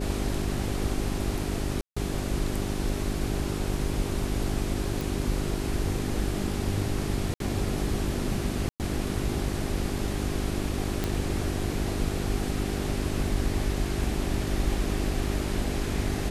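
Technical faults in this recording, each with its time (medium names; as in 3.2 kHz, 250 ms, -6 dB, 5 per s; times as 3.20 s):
hum 50 Hz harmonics 8 -32 dBFS
1.81–1.97 s: dropout 155 ms
5.01 s: pop
7.34–7.40 s: dropout 62 ms
8.69–8.80 s: dropout 108 ms
11.04 s: pop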